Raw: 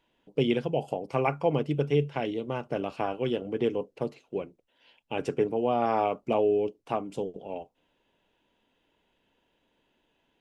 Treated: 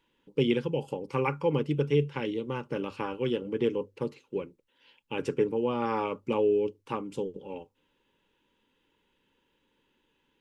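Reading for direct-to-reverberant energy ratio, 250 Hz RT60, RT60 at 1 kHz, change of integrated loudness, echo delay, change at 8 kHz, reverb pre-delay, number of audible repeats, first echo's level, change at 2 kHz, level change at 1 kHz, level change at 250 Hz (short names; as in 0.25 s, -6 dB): none, none, none, -1.0 dB, none, n/a, none, none, none, 0.0 dB, -4.5 dB, 0.0 dB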